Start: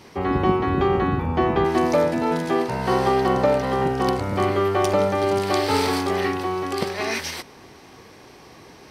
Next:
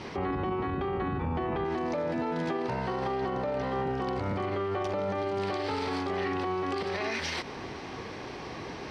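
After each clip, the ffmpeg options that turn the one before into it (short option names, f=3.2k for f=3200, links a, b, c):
-af "lowpass=4.3k,acompressor=threshold=-26dB:ratio=6,alimiter=level_in=6dB:limit=-24dB:level=0:latency=1:release=68,volume=-6dB,volume=6.5dB"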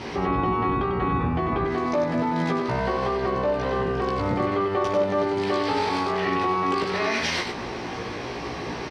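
-filter_complex "[0:a]asplit=2[a][b];[b]adelay=17,volume=-3dB[c];[a][c]amix=inputs=2:normalize=0,asplit=2[d][e];[e]aecho=0:1:96:0.501[f];[d][f]amix=inputs=2:normalize=0,volume=5dB"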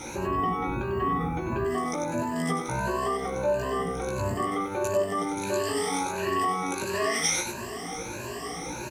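-af "afftfilt=real='re*pow(10,18/40*sin(2*PI*(1.4*log(max(b,1)*sr/1024/100)/log(2)-(1.5)*(pts-256)/sr)))':imag='im*pow(10,18/40*sin(2*PI*(1.4*log(max(b,1)*sr/1024/100)/log(2)-(1.5)*(pts-256)/sr)))':win_size=1024:overlap=0.75,aexciter=amount=15.7:drive=3.8:freq=6.6k,volume=-7.5dB"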